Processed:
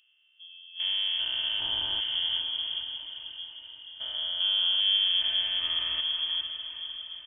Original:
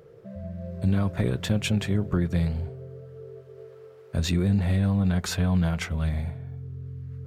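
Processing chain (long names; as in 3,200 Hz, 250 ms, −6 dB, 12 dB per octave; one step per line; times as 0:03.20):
spectrum averaged block by block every 400 ms
noise reduction from a noise print of the clip's start 16 dB
comb filter 3.4 ms, depth 55%
floating-point word with a short mantissa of 4 bits
feedback delay with all-pass diffusion 487 ms, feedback 55%, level −8.5 dB
voice inversion scrambler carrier 3,300 Hz
level −3 dB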